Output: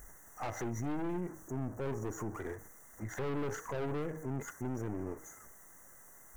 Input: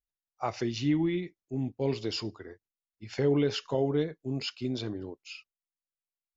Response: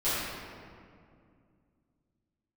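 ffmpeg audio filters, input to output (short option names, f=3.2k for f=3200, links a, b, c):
-filter_complex "[0:a]aeval=exprs='val(0)+0.5*0.00631*sgn(val(0))':c=same,asettb=1/sr,asplit=3[a][b][c];[a]atrim=end=0.924[d];[b]atrim=start=0.92:end=2.35,asetpts=PTS-STARTPTS,afade=t=in:d=0.004:c=qsin,afade=t=out:st=1.426:d=0.004:c=qsin,equalizer=f=2.2k:w=4.3:g=-11.5[e];[c]atrim=start=2.346[f];[d][e]acrossfade=d=0.004:c1=hsin:c2=qsin[g];[g][f]acrossfade=d=0.004:c1=qsin:c2=hsin,afftfilt=real='re*(1-between(b*sr/4096,2100,5700))':imag='im*(1-between(b*sr/4096,2100,5700))':win_size=4096:overlap=0.75,aeval=exprs='(tanh(50.1*val(0)+0.75)-tanh(0.75))/50.1':c=same,highshelf=f=5.1k:g=-4,bandreject=f=157.1:t=h:w=4,bandreject=f=314.2:t=h:w=4,bandreject=f=471.3:t=h:w=4,bandreject=f=628.4:t=h:w=4,bandreject=f=785.5:t=h:w=4,bandreject=f=942.6:t=h:w=4,bandreject=f=1.0997k:t=h:w=4,bandreject=f=1.2568k:t=h:w=4,bandreject=f=1.4139k:t=h:w=4,bandreject=f=1.571k:t=h:w=4,bandreject=f=1.7281k:t=h:w=4,bandreject=f=1.8852k:t=h:w=4,alimiter=level_in=12.5dB:limit=-24dB:level=0:latency=1:release=64,volume=-12.5dB,volume=7dB"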